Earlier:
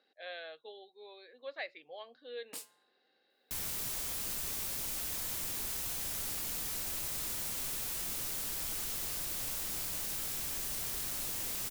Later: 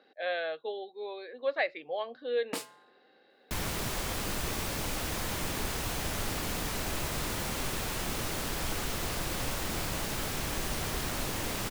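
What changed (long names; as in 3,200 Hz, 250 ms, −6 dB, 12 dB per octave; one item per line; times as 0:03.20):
first sound +3.5 dB
master: remove first-order pre-emphasis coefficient 0.8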